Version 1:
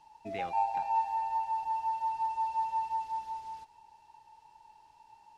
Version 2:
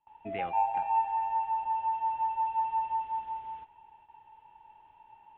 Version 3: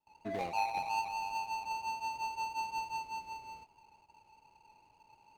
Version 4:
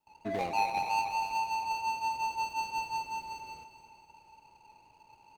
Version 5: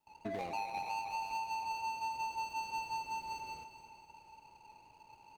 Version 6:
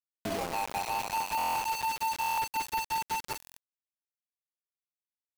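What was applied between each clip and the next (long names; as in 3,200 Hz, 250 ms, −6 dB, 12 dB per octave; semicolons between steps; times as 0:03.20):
noise gate with hold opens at −52 dBFS; Butterworth low-pass 3,300 Hz 72 dB per octave; level +2 dB
running median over 41 samples; low-shelf EQ 88 Hz −6.5 dB; level +1.5 dB
repeating echo 240 ms, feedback 53%, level −12 dB; level +4 dB
downward compressor 6 to 1, threshold −37 dBFS, peak gain reduction 11.5 dB
log-companded quantiser 2 bits; buffer that repeats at 0:01.37/0:02.19/0:03.38, samples 1,024, times 7; level −3.5 dB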